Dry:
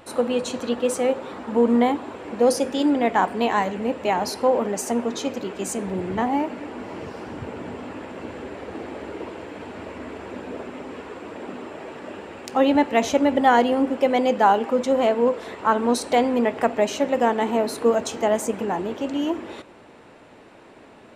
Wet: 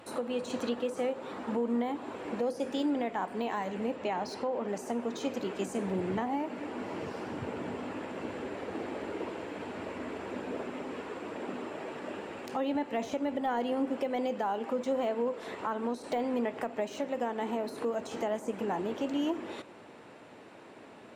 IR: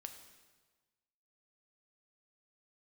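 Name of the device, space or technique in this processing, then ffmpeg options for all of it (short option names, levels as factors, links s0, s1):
podcast mastering chain: -filter_complex "[0:a]asettb=1/sr,asplit=3[s0][s1][s2];[s0]atrim=end=3.964[s3];[s1]atrim=start=3.96:end=4.68,asetpts=PTS-STARTPTS,afade=t=in:d=0.004:c=qsin,afade=t=out:st=0.716:d=0.004:c=qsin,lowpass=6700[s4];[s2]atrim=start=4.676[s5];[s3][s4]acrossfade=d=0.004:c1=hsin:c2=qsin[s6];[s6][s5]acrossfade=d=0.004:c1=qsin:c2=hsin,highpass=100,deesser=0.85,acompressor=threshold=0.0631:ratio=2,alimiter=limit=0.119:level=0:latency=1:release=443,volume=0.708" -ar 44100 -c:a libmp3lame -b:a 112k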